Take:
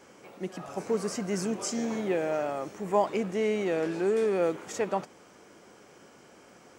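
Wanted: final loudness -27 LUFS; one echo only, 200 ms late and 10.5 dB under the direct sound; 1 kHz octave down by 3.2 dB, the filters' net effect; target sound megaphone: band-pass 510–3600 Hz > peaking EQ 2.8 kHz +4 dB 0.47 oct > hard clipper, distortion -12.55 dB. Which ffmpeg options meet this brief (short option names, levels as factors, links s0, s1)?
-af "highpass=510,lowpass=3600,equalizer=f=1000:t=o:g=-3.5,equalizer=f=2800:t=o:w=0.47:g=4,aecho=1:1:200:0.299,asoftclip=type=hard:threshold=0.0422,volume=2.66"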